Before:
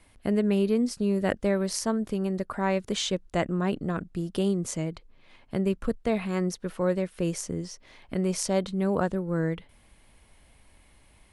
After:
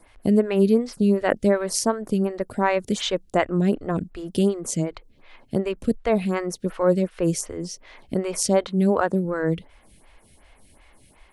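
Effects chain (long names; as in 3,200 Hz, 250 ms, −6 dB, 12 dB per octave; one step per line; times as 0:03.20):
0:08.66–0:09.25: high-pass filter 63 Hz
phaser with staggered stages 2.7 Hz
level +8 dB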